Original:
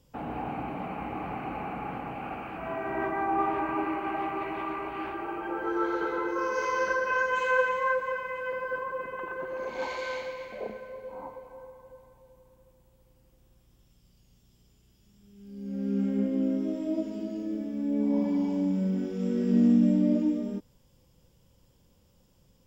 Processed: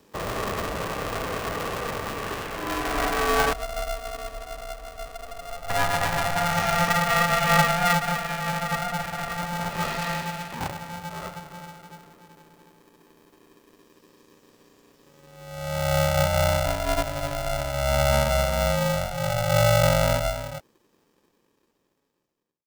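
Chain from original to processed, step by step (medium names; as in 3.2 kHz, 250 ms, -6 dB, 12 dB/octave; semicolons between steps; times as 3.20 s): fade out at the end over 4.73 s; 3.53–5.70 s: cascade formant filter u; 19.83–20.27 s: peaking EQ 110 Hz +7 dB 1.4 oct; polarity switched at an audio rate 350 Hz; trim +5.5 dB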